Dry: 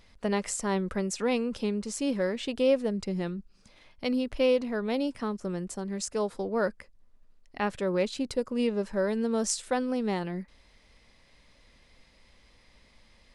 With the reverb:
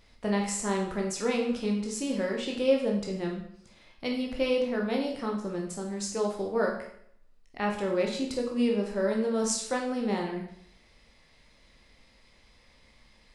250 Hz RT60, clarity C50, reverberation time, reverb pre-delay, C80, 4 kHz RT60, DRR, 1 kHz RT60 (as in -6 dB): 0.60 s, 5.5 dB, 0.65 s, 14 ms, 8.0 dB, 0.65 s, -0.5 dB, 0.65 s